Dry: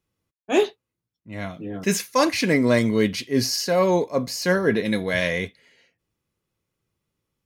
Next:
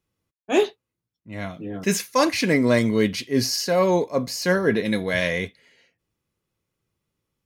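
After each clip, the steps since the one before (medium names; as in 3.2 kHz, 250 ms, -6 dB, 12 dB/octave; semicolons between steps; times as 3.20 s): no audible change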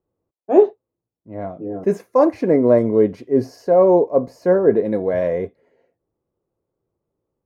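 FFT filter 210 Hz 0 dB, 380 Hz +9 dB, 720 Hz +8 dB, 3.3 kHz -23 dB, 7.4 kHz -21 dB; trim -1 dB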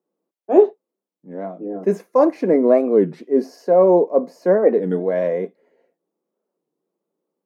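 elliptic high-pass 180 Hz, stop band 40 dB; warped record 33 1/3 rpm, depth 250 cents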